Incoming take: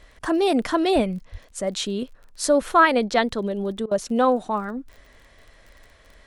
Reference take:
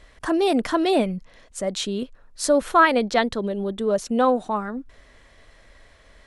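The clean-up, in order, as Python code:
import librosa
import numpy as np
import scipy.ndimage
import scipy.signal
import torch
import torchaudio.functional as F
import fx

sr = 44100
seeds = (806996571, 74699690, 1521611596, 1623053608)

y = fx.fix_declick_ar(x, sr, threshold=6.5)
y = fx.fix_deplosive(y, sr, at_s=(0.94, 1.31))
y = fx.fix_interpolate(y, sr, at_s=(3.86,), length_ms=51.0)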